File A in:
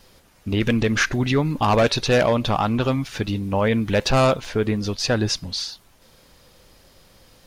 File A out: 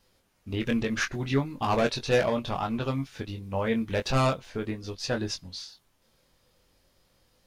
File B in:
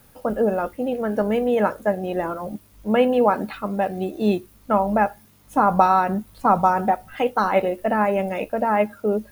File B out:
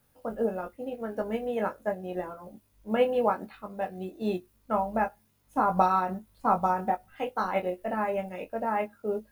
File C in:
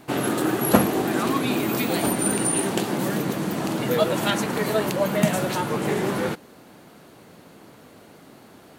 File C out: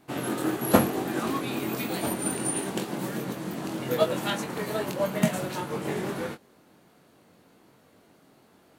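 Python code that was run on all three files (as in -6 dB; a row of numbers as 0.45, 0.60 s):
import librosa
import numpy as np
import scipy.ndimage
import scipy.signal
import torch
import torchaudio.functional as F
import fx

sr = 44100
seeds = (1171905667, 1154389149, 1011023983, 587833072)

y = fx.doubler(x, sr, ms=22.0, db=-5)
y = fx.upward_expand(y, sr, threshold_db=-30.0, expansion=1.5)
y = y * 10.0 ** (-30 / 20.0) / np.sqrt(np.mean(np.square(y)))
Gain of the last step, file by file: -6.5, -6.5, -2.5 dB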